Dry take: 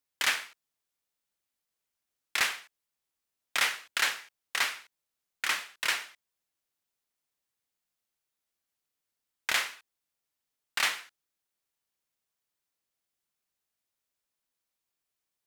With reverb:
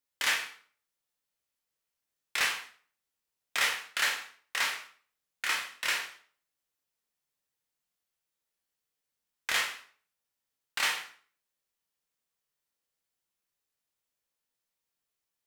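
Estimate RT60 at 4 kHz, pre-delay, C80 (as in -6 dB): 0.40 s, 12 ms, 13.0 dB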